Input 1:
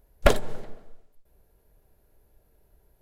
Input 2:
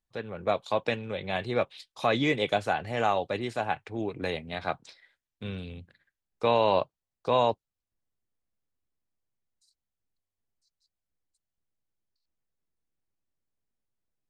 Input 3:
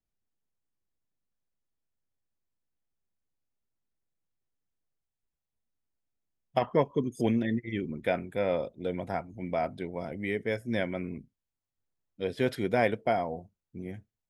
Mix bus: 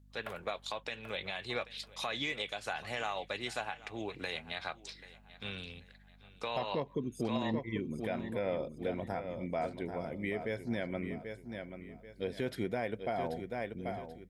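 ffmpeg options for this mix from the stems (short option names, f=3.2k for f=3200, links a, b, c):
-filter_complex "[0:a]highpass=880,equalizer=f=6.1k:w=0.72:g=-13,volume=-18.5dB,asplit=2[a][b];[b]volume=-9dB[c];[1:a]tiltshelf=f=890:g=-7.5,acompressor=threshold=-28dB:ratio=6,volume=-3dB,asplit=2[d][e];[e]volume=-20dB[f];[2:a]aeval=exprs='val(0)+0.00158*(sin(2*PI*50*n/s)+sin(2*PI*2*50*n/s)/2+sin(2*PI*3*50*n/s)/3+sin(2*PI*4*50*n/s)/4+sin(2*PI*5*50*n/s)/5)':c=same,volume=-3dB,asplit=2[g][h];[h]volume=-10dB[i];[c][f][i]amix=inputs=3:normalize=0,aecho=0:1:785|1570|2355|3140|3925:1|0.33|0.109|0.0359|0.0119[j];[a][d][g][j]amix=inputs=4:normalize=0,alimiter=limit=-24dB:level=0:latency=1:release=148"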